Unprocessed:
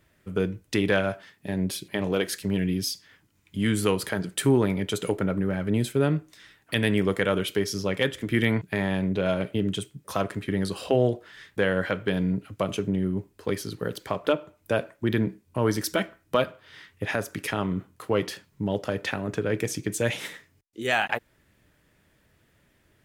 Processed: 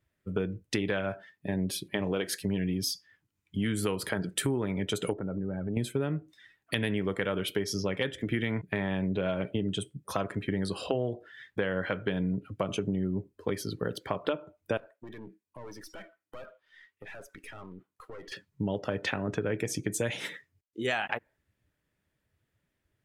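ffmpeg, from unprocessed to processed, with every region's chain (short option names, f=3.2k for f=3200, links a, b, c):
-filter_complex "[0:a]asettb=1/sr,asplit=3[a][b][c];[a]atrim=end=5.134[d];[b]atrim=start=5.13:end=5.77,asetpts=PTS-STARTPTS,afade=t=in:d=0.004:c=qsin,afade=t=out:st=0.636:d=0.004:c=qsin,lowpass=f=1k:p=1,acompressor=threshold=-30dB:ratio=4:attack=3.2:release=140:knee=1:detection=peak[e];[c]atrim=start=5.766[f];[d][e]acrossfade=d=0.004:c1=hsin:c2=qsin[g];[g][f]acrossfade=d=0.004:c1=qsin:c2=hsin,asettb=1/sr,asplit=3[h][i][j];[h]atrim=end=14.774[k];[i]atrim=start=14.77:end=18.32,asetpts=PTS-STARTPTS,afade=t=in:d=0.004:c=qsin,afade=t=out:st=3.546:d=0.004:c=qsin,highpass=f=580:p=1,aeval=exprs='(tanh(56.2*val(0)+0.65)-tanh(0.65))/56.2':c=same,acompressor=threshold=-40dB:ratio=4:attack=3.2:release=140:knee=1:detection=peak[l];[j]atrim=start=18.316[m];[k][l]acrossfade=d=0.004:c1=hsin:c2=qsin[n];[n][m]acrossfade=d=0.004:c1=qsin:c2=hsin,afftdn=nr=16:nf=-46,acompressor=threshold=-26dB:ratio=6"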